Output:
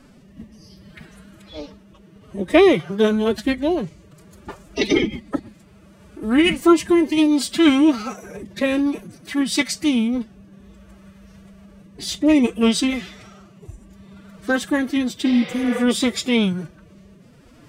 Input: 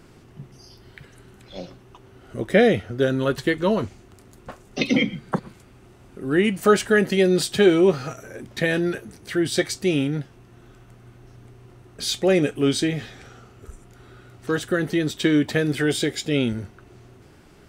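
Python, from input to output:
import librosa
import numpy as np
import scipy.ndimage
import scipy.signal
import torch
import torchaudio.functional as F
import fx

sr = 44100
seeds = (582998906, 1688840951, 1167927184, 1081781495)

y = fx.rotary(x, sr, hz=0.6)
y = fx.pitch_keep_formants(y, sr, semitones=8.5)
y = fx.spec_repair(y, sr, seeds[0], start_s=15.28, length_s=0.49, low_hz=350.0, high_hz=5800.0, source='both')
y = y * 10.0 ** (4.5 / 20.0)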